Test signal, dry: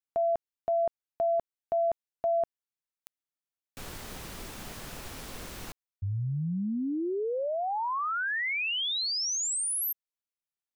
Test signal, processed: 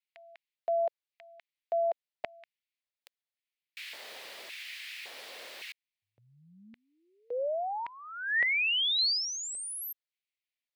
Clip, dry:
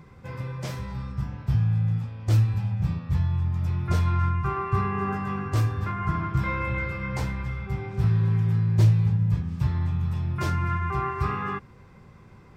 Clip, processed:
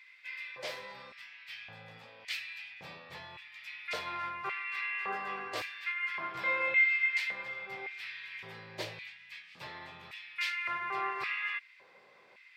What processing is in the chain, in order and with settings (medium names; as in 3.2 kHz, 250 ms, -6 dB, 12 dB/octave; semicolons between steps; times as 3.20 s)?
LFO high-pass square 0.89 Hz 550–2200 Hz; high-order bell 2.9 kHz +10 dB; trim -8 dB